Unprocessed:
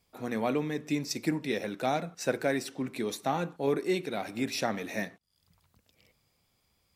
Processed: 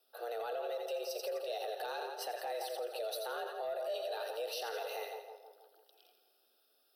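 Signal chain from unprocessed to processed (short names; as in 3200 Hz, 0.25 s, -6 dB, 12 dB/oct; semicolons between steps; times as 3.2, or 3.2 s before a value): in parallel at -3 dB: compressor, threshold -36 dBFS, peak gain reduction 13.5 dB; on the sum: bell 1600 Hz -6 dB 0.36 oct; split-band echo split 980 Hz, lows 0.161 s, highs 84 ms, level -7 dB; frequency shift +230 Hz; fixed phaser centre 1500 Hz, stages 8; soft clip -16.5 dBFS, distortion -25 dB; limiter -27.5 dBFS, peak gain reduction 9 dB; high shelf 8100 Hz +6.5 dB; gain -4 dB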